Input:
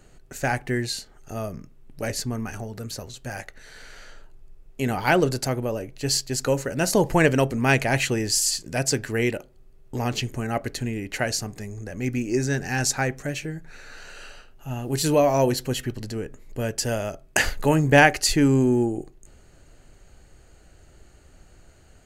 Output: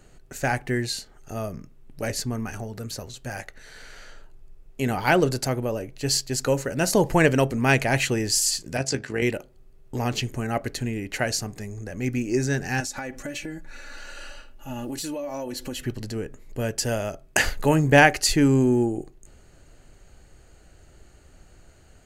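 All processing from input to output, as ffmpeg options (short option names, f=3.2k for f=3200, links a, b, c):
-filter_complex "[0:a]asettb=1/sr,asplit=3[a][b][c];[a]atrim=end=8.774[d];[b]atrim=start=8.77:end=9.22,asetpts=PTS-STARTPTS,afade=t=in:d=0.004:c=qsin,afade=t=out:st=0.446:d=0.004:c=qsin,highpass=110,lowpass=7k,tremolo=f=51:d=0.519,asplit=2[e][f];[f]adelay=15,volume=-12.5dB[g];[e][g]amix=inputs=2:normalize=0,atrim=end_sample=19845[h];[c]atrim=start=9.216[i];[d][h]acrossfade=d=0.004:c1=hsin:c2=qsin[j];[j][i]acrossfade=d=0.004:c1=qsin:c2=hsin,asettb=1/sr,asplit=3[k][l][m];[k]atrim=end=12.804[n];[l]atrim=start=12.8:end=15.82,asetpts=PTS-STARTPTS,afade=t=in:d=0.004:c=qsin,afade=t=out:st=3.016:d=0.004:c=qsin,aecho=1:1:3.5:0.68,atrim=end_sample=133182,acompressor=threshold=-28dB:ratio=12:attack=3.2:release=140:knee=1:detection=peak[o];[m]atrim=start=15.816[p];[n][o]acrossfade=d=0.004:c1=hsin:c2=qsin[q];[q][p]acrossfade=d=0.004:c1=qsin:c2=hsin"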